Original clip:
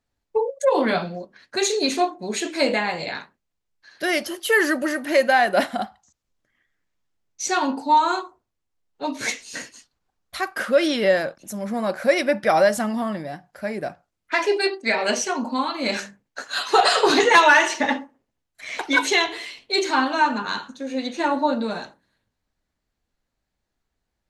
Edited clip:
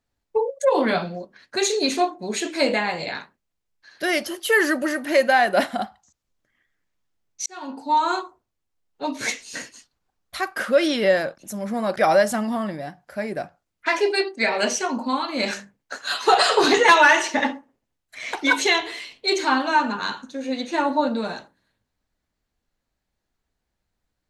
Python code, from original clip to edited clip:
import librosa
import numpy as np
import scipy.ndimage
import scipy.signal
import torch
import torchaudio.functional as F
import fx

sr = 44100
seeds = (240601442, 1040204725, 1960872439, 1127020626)

y = fx.edit(x, sr, fx.fade_in_span(start_s=7.46, length_s=0.69),
    fx.cut(start_s=11.96, length_s=0.46), tone=tone)